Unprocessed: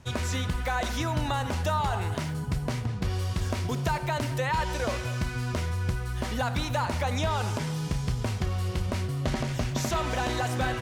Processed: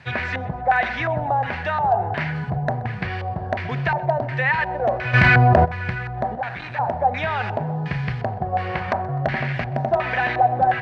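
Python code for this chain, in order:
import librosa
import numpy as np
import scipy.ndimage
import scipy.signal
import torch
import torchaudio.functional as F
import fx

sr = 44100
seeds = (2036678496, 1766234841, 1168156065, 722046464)

y = fx.peak_eq(x, sr, hz=fx.line((8.52, 460.0), (9.25, 2100.0)), db=11.0, octaves=1.9, at=(8.52, 9.25), fade=0.02)
y = fx.rider(y, sr, range_db=10, speed_s=0.5)
y = fx.tube_stage(y, sr, drive_db=33.0, bias=0.7, at=(6.35, 6.79))
y = fx.dmg_noise_colour(y, sr, seeds[0], colour='violet', level_db=-42.0)
y = fx.filter_lfo_lowpass(y, sr, shape='square', hz=1.4, low_hz=720.0, high_hz=2300.0, q=3.1)
y = 10.0 ** (-14.5 / 20.0) * (np.abs((y / 10.0 ** (-14.5 / 20.0) + 3.0) % 4.0 - 2.0) - 1.0)
y = fx.cabinet(y, sr, low_hz=100.0, low_slope=12, high_hz=8500.0, hz=(140.0, 280.0, 750.0, 1700.0, 4400.0, 7100.0), db=(6, -5, 8, 10, 6, -5))
y = fx.echo_feedback(y, sr, ms=127, feedback_pct=43, wet_db=-22)
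y = fx.env_flatten(y, sr, amount_pct=100, at=(5.13, 5.64), fade=0.02)
y = F.gain(torch.from_numpy(y), 1.0).numpy()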